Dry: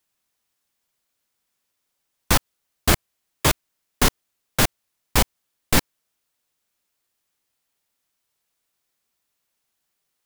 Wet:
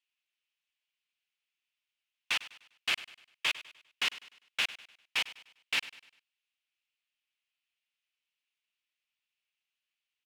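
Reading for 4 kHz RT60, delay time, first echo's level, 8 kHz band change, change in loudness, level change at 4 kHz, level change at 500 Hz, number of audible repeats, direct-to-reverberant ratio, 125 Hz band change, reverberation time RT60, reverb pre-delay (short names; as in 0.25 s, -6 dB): none, 0.1 s, -16.5 dB, -19.0 dB, -10.5 dB, -6.0 dB, -25.0 dB, 3, none, under -35 dB, none, none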